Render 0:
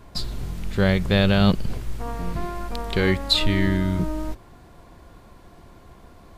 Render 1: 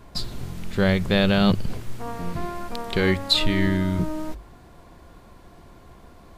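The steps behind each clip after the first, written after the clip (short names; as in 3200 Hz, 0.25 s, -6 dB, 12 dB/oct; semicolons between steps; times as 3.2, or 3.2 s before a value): notches 50/100 Hz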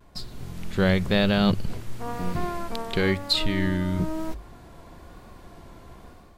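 AGC gain up to 9.5 dB; vibrato 1 Hz 46 cents; gain -7.5 dB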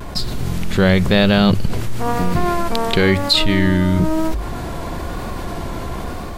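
fast leveller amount 50%; gain +6.5 dB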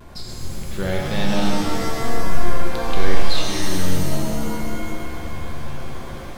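shimmer reverb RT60 2.3 s, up +7 st, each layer -2 dB, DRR -1 dB; gain -13.5 dB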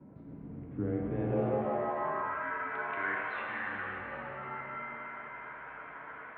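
band-pass sweep 300 Hz -> 1600 Hz, 1.03–2.47; mistuned SSB -83 Hz 160–2600 Hz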